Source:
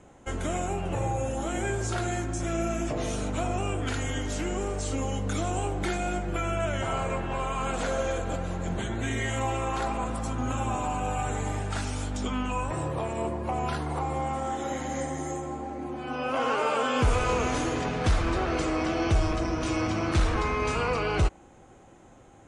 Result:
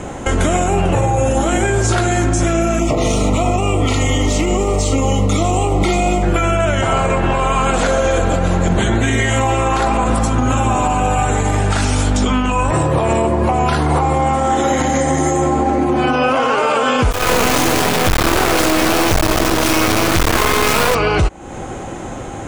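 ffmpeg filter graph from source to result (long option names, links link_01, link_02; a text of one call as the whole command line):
ffmpeg -i in.wav -filter_complex "[0:a]asettb=1/sr,asplit=3[link_01][link_02][link_03];[link_01]atrim=end=2.794[link_04];[link_02]atrim=start=2.79:end=6.23,asetpts=PTS-STARTPTS,afade=type=in:duration=0.004:curve=qsin,afade=type=out:start_time=3.436:duration=0.004:curve=qsin,acrossover=split=9000[link_05][link_06];[link_06]acompressor=threshold=-57dB:ratio=4:attack=1:release=60[link_07];[link_05][link_07]amix=inputs=2:normalize=0,aeval=exprs='sgn(val(0))*max(abs(val(0))-0.00126,0)':channel_layout=same,asuperstop=centerf=1600:order=12:qfactor=3.2[link_08];[link_03]atrim=start=6.226[link_09];[link_04][link_08]acrossfade=duration=0.004:curve1=hsin:curve2=qsin[link_10];[link_10][link_09]acrossfade=duration=0.004:curve1=qsin:curve2=hsin,asettb=1/sr,asplit=3[link_11][link_12][link_13];[link_11]atrim=end=17.114[link_14];[link_12]atrim=start=17.11:end=20.95,asetpts=PTS-STARTPTS,afade=type=in:duration=0.004:curve=qsin,afade=type=out:start_time=3.836:duration=0.004:curve=qsin,acrusher=bits=3:dc=4:mix=0:aa=0.000001,lowshelf=frequency=170:gain=-6,volume=26.5dB,asoftclip=hard,volume=-26.5dB[link_15];[link_13]atrim=start=20.946[link_16];[link_14][link_15]acrossfade=duration=0.004:curve1=hsin:curve2=qsin[link_17];[link_17][link_16]acrossfade=duration=0.004:curve1=qsin:curve2=hsin,acompressor=threshold=-36dB:ratio=6,alimiter=level_in=31.5dB:limit=-1dB:release=50:level=0:latency=1,volume=-5.5dB" out.wav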